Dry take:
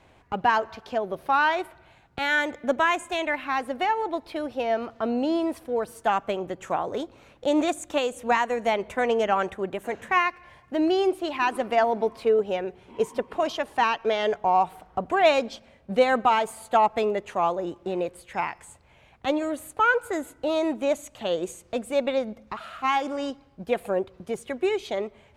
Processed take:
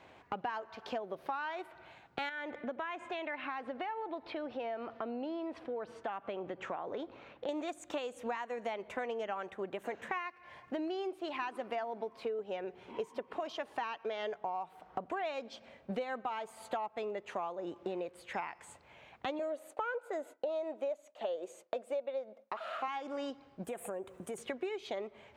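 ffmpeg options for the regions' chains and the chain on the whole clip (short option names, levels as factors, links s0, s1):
-filter_complex "[0:a]asettb=1/sr,asplit=3[s0][s1][s2];[s0]atrim=end=2.294[s3];[s1]atrim=start=2.29:end=7.49,asetpts=PTS-STARTPTS,afade=t=in:d=0.004:c=qsin,afade=t=out:st=5.196:d=0.004:c=qsin,lowpass=3700,acompressor=threshold=0.0141:ratio=2:attack=3.2:release=140:knee=1:detection=peak[s4];[s2]atrim=start=7.486[s5];[s3][s4]acrossfade=d=0.004:c1=hsin:c2=qsin[s6];[s6][s5]acrossfade=d=0.004:c1=qsin:c2=hsin,asettb=1/sr,asplit=3[s7][s8][s9];[s7]atrim=end=19.394[s10];[s8]atrim=start=19.39:end=22.88,asetpts=PTS-STARTPTS,afade=t=in:d=0.004:c=qsin,afade=t=out:st=3.486:d=0.004:c=qsin,highpass=270,agate=range=0.0224:threshold=0.00447:ratio=3:release=100:detection=peak,equalizer=f=590:w=1.9:g=11.5[s11];[s9]atrim=start=22.876[s12];[s10][s11]acrossfade=d=0.004:c1=hsin:c2=qsin[s13];[s13][s12]acrossfade=d=0.004:c1=qsin:c2=hsin,asettb=1/sr,asplit=3[s14][s15][s16];[s14]atrim=end=23.644[s17];[s15]atrim=start=23.64:end=24.38,asetpts=PTS-STARTPTS,afade=t=in:d=0.004:c=qsin,afade=t=out:st=0.736:d=0.004:c=qsin,highshelf=f=6400:t=q:w=3:g=11.5,acompressor=threshold=0.0158:ratio=4:attack=3.2:release=140:knee=1:detection=peak[s18];[s16]atrim=start=24.376[s19];[s17][s18]acrossfade=d=0.004:c1=hsin:c2=qsin[s20];[s20][s19]acrossfade=d=0.004:c1=qsin:c2=hsin,highpass=f=280:p=1,equalizer=f=11000:t=o:w=1.3:g=-10.5,acompressor=threshold=0.0158:ratio=10,volume=1.12"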